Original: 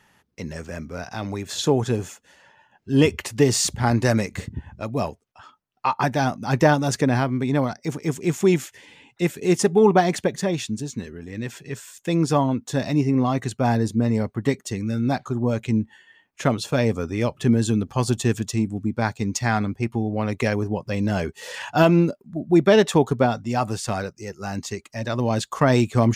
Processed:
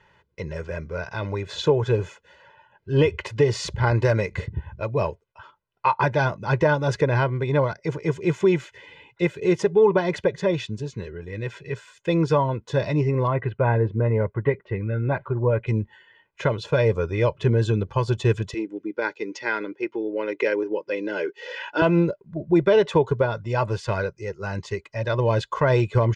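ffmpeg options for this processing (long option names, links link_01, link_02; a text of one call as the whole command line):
ffmpeg -i in.wav -filter_complex "[0:a]asettb=1/sr,asplit=3[link_01][link_02][link_03];[link_01]atrim=end=13.274[link_04];[link_02]atrim=start=13.27:end=15.67,asetpts=PTS-STARTPTS,afade=type=in:duration=0.004:curve=qsin,afade=type=out:start_time=2.396:duration=0.004:curve=qsin,lowpass=frequency=2500:width=0.5412,lowpass=frequency=2500:width=1.3066[link_05];[link_03]atrim=start=15.666[link_06];[link_04][link_05]acrossfade=duration=0.004:curve1=hsin:curve2=qsin[link_07];[link_07][link_06]acrossfade=duration=0.004:curve1=qsin:curve2=hsin,asettb=1/sr,asplit=3[link_08][link_09][link_10];[link_08]atrim=end=18.544[link_11];[link_09]atrim=start=18.54:end=21.82,asetpts=PTS-STARTPTS,afade=type=in:duration=0.004:curve=qsin,afade=type=out:start_time=3.276:duration=0.004:curve=qsin,highpass=frequency=300:width=0.5412,highpass=frequency=300:width=1.3066,equalizer=frequency=300:width_type=q:width=4:gain=8,equalizer=frequency=690:width_type=q:width=4:gain=-10,equalizer=frequency=1100:width_type=q:width=4:gain=-9,equalizer=frequency=4100:width_type=q:width=4:gain=-5,lowpass=frequency=6200:width=0.5412,lowpass=frequency=6200:width=1.3066[link_12];[link_10]atrim=start=21.816[link_13];[link_11][link_12]acrossfade=duration=0.004:curve1=hsin:curve2=qsin[link_14];[link_14][link_13]acrossfade=duration=0.004:curve1=qsin:curve2=hsin,lowpass=3100,aecho=1:1:2:0.82,alimiter=limit=-9dB:level=0:latency=1:release=225" out.wav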